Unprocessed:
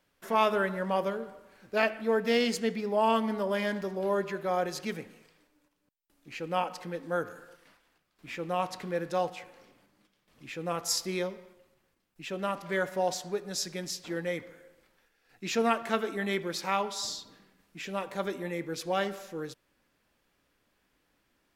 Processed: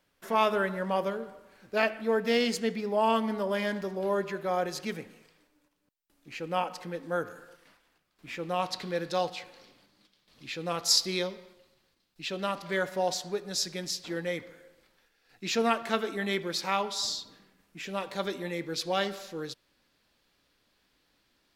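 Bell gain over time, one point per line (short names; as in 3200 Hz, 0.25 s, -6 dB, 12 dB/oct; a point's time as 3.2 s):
bell 4200 Hz 0.85 oct
8.31 s +1.5 dB
8.81 s +12 dB
12.38 s +12 dB
12.83 s +5.5 dB
17.17 s +5.5 dB
17.79 s -1 dB
18.06 s +9.5 dB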